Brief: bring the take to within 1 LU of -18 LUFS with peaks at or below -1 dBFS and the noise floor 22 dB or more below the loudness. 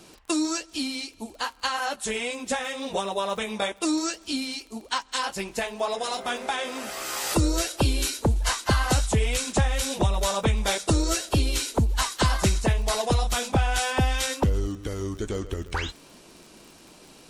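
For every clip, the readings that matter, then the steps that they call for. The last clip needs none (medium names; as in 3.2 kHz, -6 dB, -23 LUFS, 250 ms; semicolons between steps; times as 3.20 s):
tick rate 42 per s; loudness -26.5 LUFS; peak level -11.0 dBFS; loudness target -18.0 LUFS
-> de-click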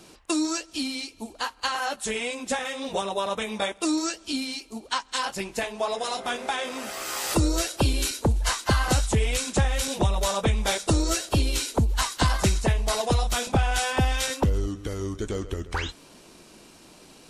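tick rate 0.058 per s; loudness -26.5 LUFS; peak level -10.0 dBFS; loudness target -18.0 LUFS
-> trim +8.5 dB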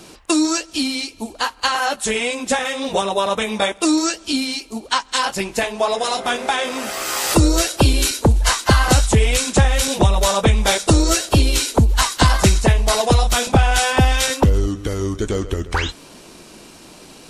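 loudness -18.0 LUFS; peak level -1.5 dBFS; noise floor -43 dBFS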